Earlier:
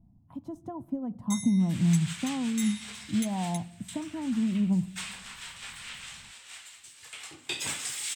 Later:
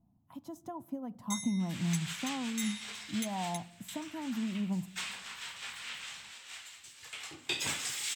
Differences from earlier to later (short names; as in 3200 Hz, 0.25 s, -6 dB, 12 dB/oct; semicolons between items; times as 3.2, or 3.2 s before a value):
speech: add tilt +3.5 dB/oct; master: add bell 9000 Hz -8.5 dB 0.29 oct